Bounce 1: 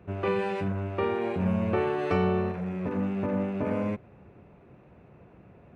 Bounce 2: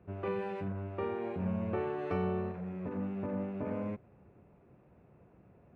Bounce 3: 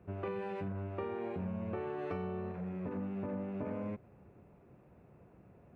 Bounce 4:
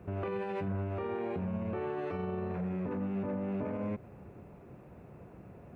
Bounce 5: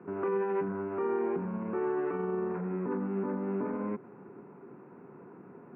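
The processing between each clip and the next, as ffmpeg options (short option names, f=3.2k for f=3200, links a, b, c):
-af "highshelf=f=3k:g=-11,volume=-7.5dB"
-af "acompressor=threshold=-36dB:ratio=6,volume=1dB"
-af "alimiter=level_in=12.5dB:limit=-24dB:level=0:latency=1:release=70,volume=-12.5dB,volume=8.5dB"
-af "highpass=f=160:w=0.5412,highpass=f=160:w=1.3066,equalizer=f=260:t=q:w=4:g=5,equalizer=f=390:t=q:w=4:g=8,equalizer=f=610:t=q:w=4:g=-8,equalizer=f=970:t=q:w=4:g=7,equalizer=f=1.4k:t=q:w=4:g=6,lowpass=f=2.2k:w=0.5412,lowpass=f=2.2k:w=1.3066"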